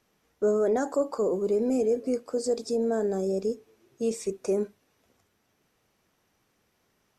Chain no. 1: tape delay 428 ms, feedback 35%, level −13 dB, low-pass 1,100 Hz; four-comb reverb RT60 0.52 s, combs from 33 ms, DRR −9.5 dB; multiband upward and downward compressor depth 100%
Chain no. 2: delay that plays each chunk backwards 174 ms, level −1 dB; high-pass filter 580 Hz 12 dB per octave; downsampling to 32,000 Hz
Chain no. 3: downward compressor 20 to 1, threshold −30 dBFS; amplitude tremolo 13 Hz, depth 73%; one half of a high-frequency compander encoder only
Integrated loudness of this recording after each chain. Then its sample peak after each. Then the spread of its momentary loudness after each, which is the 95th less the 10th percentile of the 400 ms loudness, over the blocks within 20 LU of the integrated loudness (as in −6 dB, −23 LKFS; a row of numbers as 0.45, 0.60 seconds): −18.5, −31.5, −39.0 LKFS; −5.5, −16.5, −24.5 dBFS; 14, 10, 5 LU